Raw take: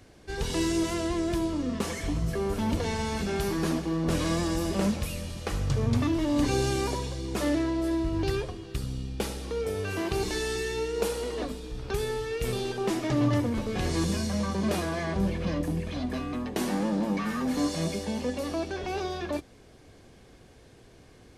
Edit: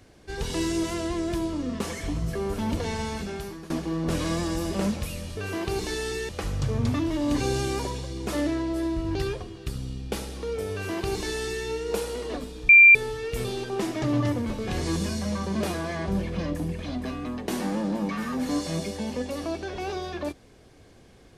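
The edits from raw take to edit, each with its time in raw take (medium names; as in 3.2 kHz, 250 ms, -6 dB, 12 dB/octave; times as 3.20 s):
3.03–3.70 s: fade out, to -19 dB
9.81–10.73 s: copy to 5.37 s
11.77–12.03 s: bleep 2.37 kHz -8.5 dBFS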